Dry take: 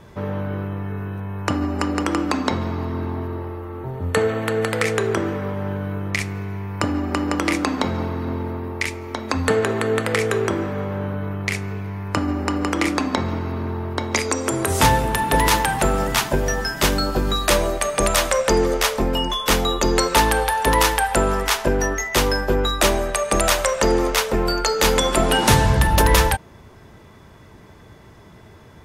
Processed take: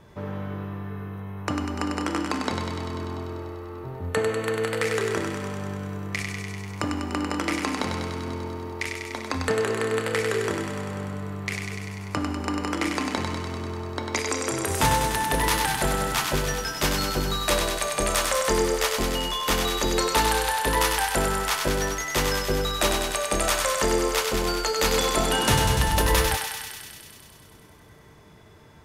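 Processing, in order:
tuned comb filter 150 Hz, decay 1.5 s, mix 70%
on a send: feedback echo with a high-pass in the loop 98 ms, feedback 78%, high-pass 860 Hz, level −4 dB
on the sum: level +3.5 dB

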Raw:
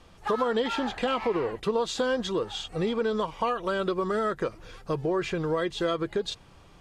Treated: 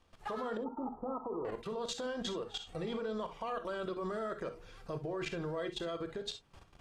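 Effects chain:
0:00.57–0:01.45: Chebyshev low-pass with heavy ripple 1,300 Hz, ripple 6 dB
dynamic equaliser 640 Hz, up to +6 dB, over −46 dBFS, Q 4.7
in parallel at −2 dB: downward compressor 6 to 1, threshold −37 dBFS, peak gain reduction 15.5 dB
on the sum: mains-hum notches 60/120/180/240/300/360/420/480 Hz
output level in coarse steps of 16 dB
on a send at −8.5 dB: convolution reverb, pre-delay 3 ms
on the sum: level −6 dB

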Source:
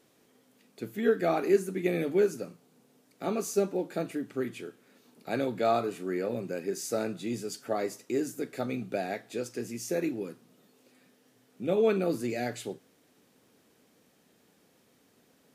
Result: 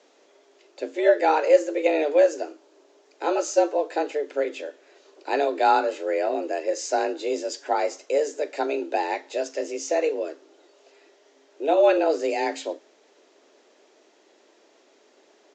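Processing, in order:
frequency shifter +150 Hz
downsampling to 16,000 Hz
level +7 dB

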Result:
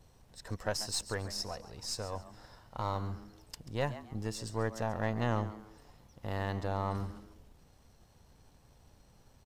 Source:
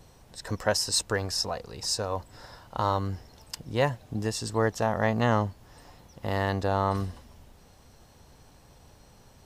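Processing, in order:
gain on one half-wave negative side −3 dB
low-shelf EQ 110 Hz +5 dB
echo with shifted repeats 137 ms, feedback 30%, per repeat +110 Hz, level −14.5 dB
level −8 dB

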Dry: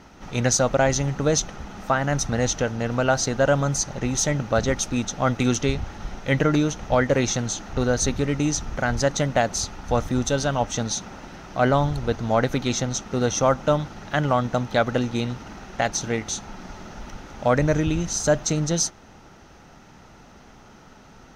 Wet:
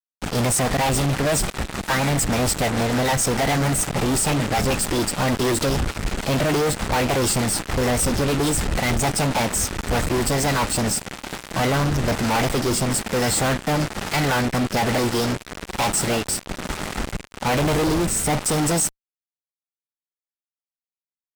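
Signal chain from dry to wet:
formants moved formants +5 semitones
rotating-speaker cabinet horn 6.7 Hz, later 1.1 Hz, at 0:09.72
fuzz pedal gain 41 dB, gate −37 dBFS
level −5 dB

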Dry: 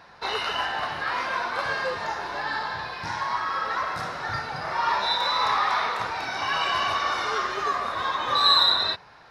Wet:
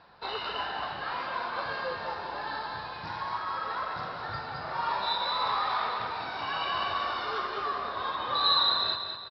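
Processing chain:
Butterworth low-pass 5,000 Hz 72 dB per octave
parametric band 2,000 Hz −6 dB 0.61 octaves
on a send: repeating echo 204 ms, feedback 44%, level −7 dB
on the sum: level −5.5 dB

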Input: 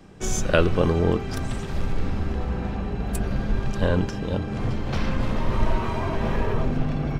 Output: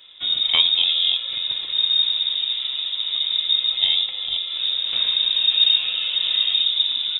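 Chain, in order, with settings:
dynamic equaliser 2,200 Hz, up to −5 dB, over −44 dBFS, Q 1.1
voice inversion scrambler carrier 3,700 Hz
0:02.69–0:03.57: low-shelf EQ 130 Hz −7.5 dB

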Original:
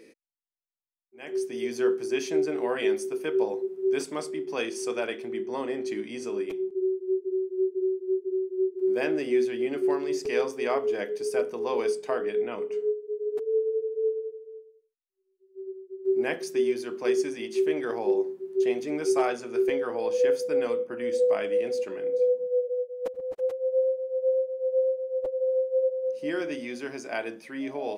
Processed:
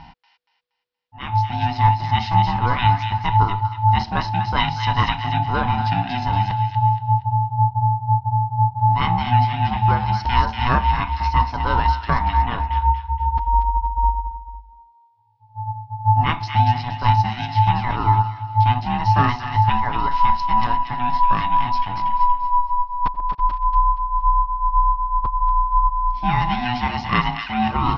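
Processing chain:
Butterworth low-pass 4,900 Hz 72 dB per octave
notch filter 1,800 Hz, Q 18
in parallel at +1 dB: speech leveller
on the sum: ring modulation 490 Hz
delay with a high-pass on its return 236 ms, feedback 35%, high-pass 1,800 Hz, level −5 dB
level +5.5 dB

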